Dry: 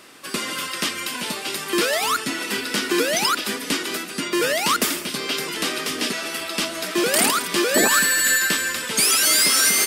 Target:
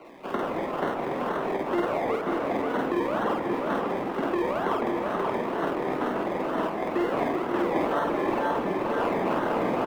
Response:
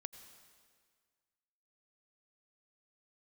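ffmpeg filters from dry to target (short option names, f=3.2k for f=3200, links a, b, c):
-filter_complex "[0:a]acrusher=samples=25:mix=1:aa=0.000001:lfo=1:lforange=15:lforate=2.1,asplit=2[a][b];[b]adelay=530.6,volume=-6dB,highshelf=f=4k:g=-11.9[c];[a][c]amix=inputs=2:normalize=0,asplit=2[d][e];[1:a]atrim=start_sample=2205,highshelf=f=3.7k:g=10.5,adelay=49[f];[e][f]afir=irnorm=-1:irlink=0,volume=1dB[g];[d][g]amix=inputs=2:normalize=0,acrossover=split=180|1900[h][i][j];[h]acompressor=threshold=-32dB:ratio=4[k];[i]acompressor=threshold=-24dB:ratio=4[l];[j]acompressor=threshold=-39dB:ratio=4[m];[k][l][m]amix=inputs=3:normalize=0,acrossover=split=190 3000:gain=0.112 1 0.112[n][o][p];[n][o][p]amix=inputs=3:normalize=0"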